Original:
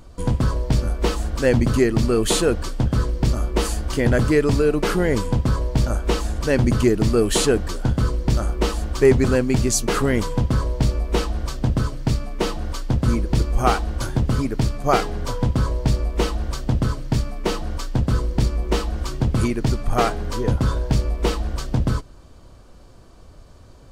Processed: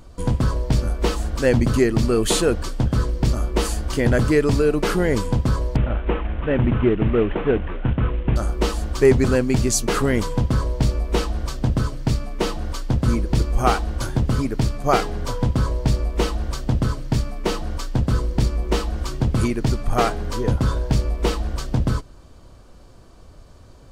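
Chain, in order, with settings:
0:05.76–0:08.36: variable-slope delta modulation 16 kbit/s

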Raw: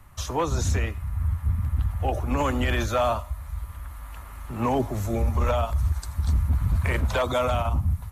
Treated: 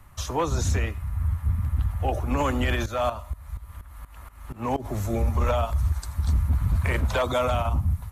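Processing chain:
0:02.75–0:04.84: shaped tremolo saw up 4.2 Hz, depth 70% → 95%

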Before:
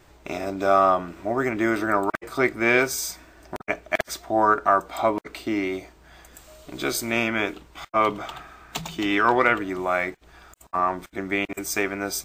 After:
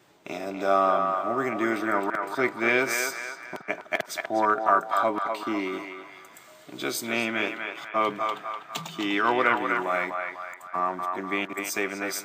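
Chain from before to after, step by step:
high-pass filter 130 Hz 24 dB per octave
parametric band 3,300 Hz +3 dB 0.48 octaves
on a send: feedback echo with a band-pass in the loop 248 ms, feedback 53%, band-pass 1,300 Hz, level −3 dB
on the sum: level −4 dB

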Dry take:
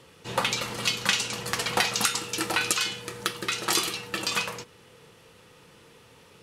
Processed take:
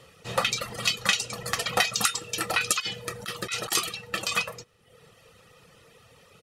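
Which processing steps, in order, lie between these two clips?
comb filter 1.6 ms, depth 49%
0:02.80–0:03.72: compressor whose output falls as the input rises −29 dBFS, ratio −0.5
reverb reduction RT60 0.85 s

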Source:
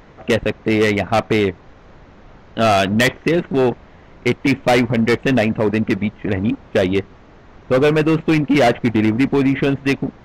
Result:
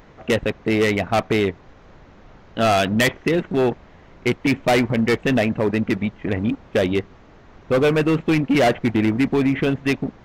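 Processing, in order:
high-shelf EQ 8,900 Hz +5 dB
level −3 dB

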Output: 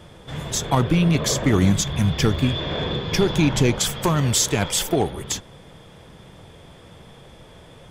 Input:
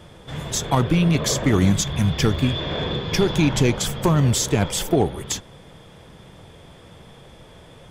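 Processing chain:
0:03.79–0:05.11: tilt shelving filter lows −3.5 dB, about 800 Hz

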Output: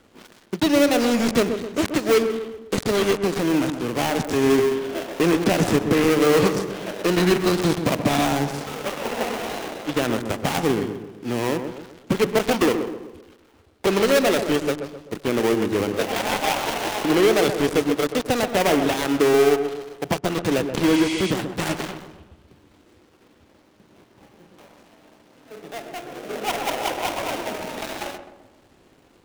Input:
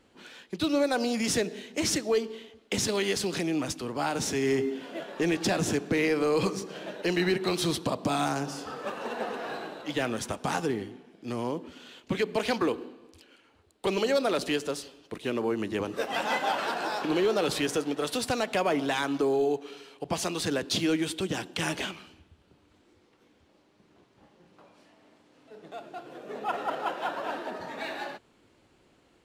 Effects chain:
gap after every zero crossing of 0.29 ms
healed spectral selection 0:20.93–0:21.29, 1,900–10,000 Hz before
feedback echo with a low-pass in the loop 129 ms, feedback 47%, low-pass 1,300 Hz, level −7.5 dB
level +8.5 dB

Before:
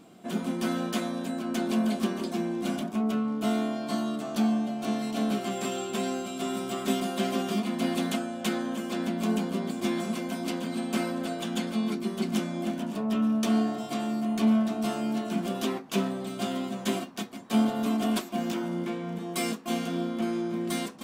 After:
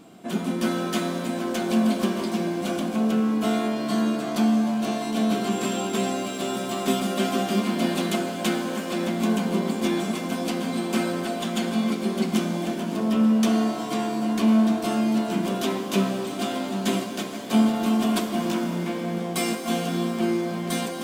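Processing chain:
reverb with rising layers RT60 3.5 s, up +7 semitones, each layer −8 dB, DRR 6 dB
level +4 dB

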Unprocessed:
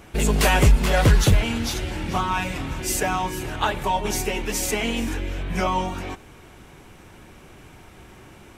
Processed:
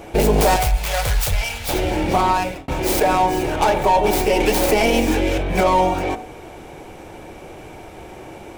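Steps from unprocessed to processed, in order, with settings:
stylus tracing distortion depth 0.46 ms
flat-topped bell 630 Hz +9.5 dB 1.2 octaves
soft clipping −5.5 dBFS, distortion −22 dB
0:00.56–0:01.69: guitar amp tone stack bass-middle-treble 10-0-10
hum removal 57.11 Hz, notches 40
hollow resonant body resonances 330/2,300 Hz, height 8 dB, ringing for 35 ms
brickwall limiter −12.5 dBFS, peak gain reduction 6 dB
0:02.28–0:02.68: fade out
0:04.40–0:05.38: multiband upward and downward compressor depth 70%
level +5 dB

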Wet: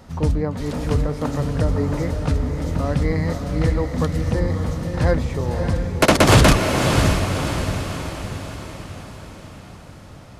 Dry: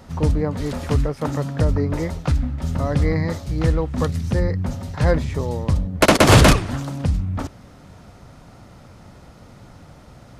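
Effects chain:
feedback delay with all-pass diffusion 591 ms, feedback 52%, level −5.5 dB
level −1 dB

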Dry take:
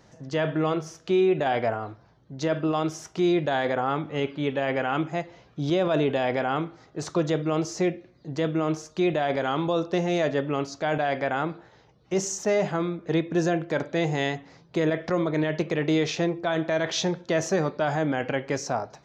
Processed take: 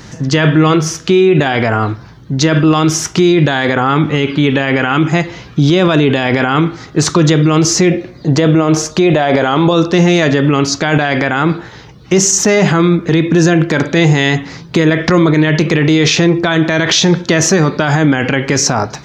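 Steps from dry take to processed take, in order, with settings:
parametric band 630 Hz −11 dB 1.1 octaves, from 0:07.91 −2 dB, from 0:09.71 −10 dB
boost into a limiter +25 dB
level −1 dB

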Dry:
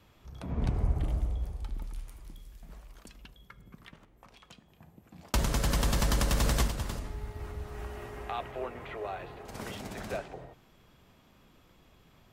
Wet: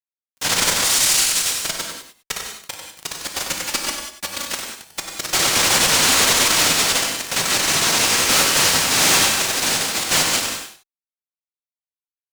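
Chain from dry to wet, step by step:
three sine waves on the formant tracks
cochlear-implant simulation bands 1
automatic gain control gain up to 12.5 dB
0:00.84–0:01.53: spectral tilt +4 dB per octave
fuzz pedal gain 34 dB, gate −32 dBFS
0:03.61–0:04.52: comb filter 3.5 ms, depth 64%
single-tap delay 95 ms −9.5 dB
reverb whose tail is shaped and stops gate 220 ms flat, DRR 1.5 dB
level −2.5 dB

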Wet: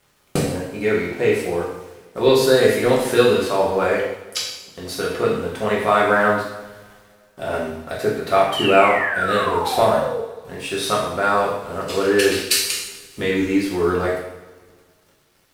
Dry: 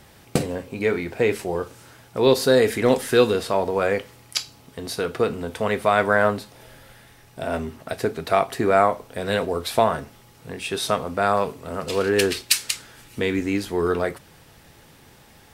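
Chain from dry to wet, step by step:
dead-zone distortion −47 dBFS
sound drawn into the spectrogram fall, 0:08.52–0:10.20, 430–3,200 Hz −27 dBFS
coupled-rooms reverb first 0.78 s, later 2.1 s, DRR −5 dB
level −2.5 dB

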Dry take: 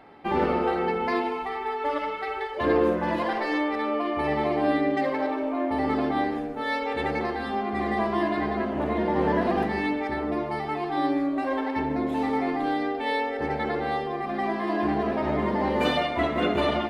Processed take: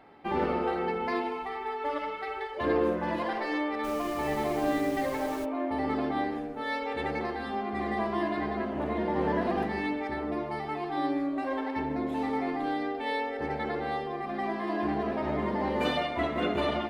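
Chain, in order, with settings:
0:03.83–0:05.44: background noise pink −41 dBFS
level −4.5 dB

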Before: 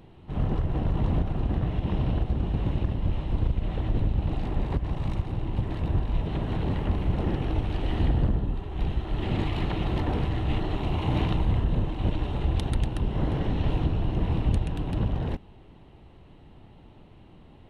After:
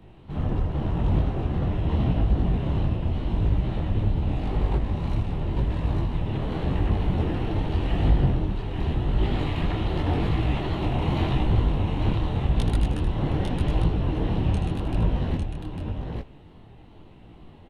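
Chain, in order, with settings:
tape wow and flutter 65 cents
multi-tap delay 79/851 ms −8.5/−4.5 dB
micro pitch shift up and down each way 30 cents
level +4.5 dB

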